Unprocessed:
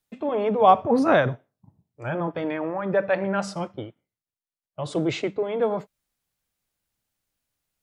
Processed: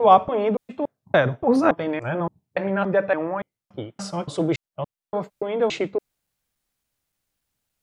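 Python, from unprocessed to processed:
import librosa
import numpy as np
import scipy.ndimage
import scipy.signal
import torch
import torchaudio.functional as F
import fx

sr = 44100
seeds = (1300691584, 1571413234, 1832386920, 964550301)

y = fx.block_reorder(x, sr, ms=285.0, group=3)
y = y * 10.0 ** (2.0 / 20.0)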